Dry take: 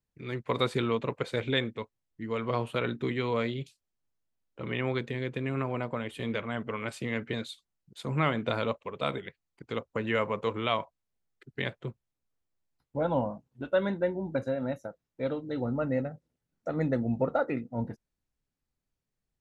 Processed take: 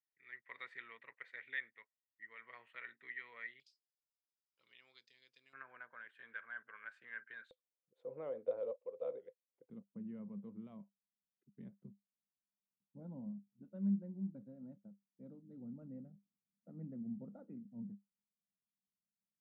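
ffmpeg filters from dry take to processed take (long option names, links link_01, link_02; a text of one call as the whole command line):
ffmpeg -i in.wav -af "asetnsamples=nb_out_samples=441:pad=0,asendcmd='3.6 bandpass f 5000;5.53 bandpass f 1600;7.51 bandpass f 510;9.7 bandpass f 200',bandpass=frequency=1900:width_type=q:width=14:csg=0" out.wav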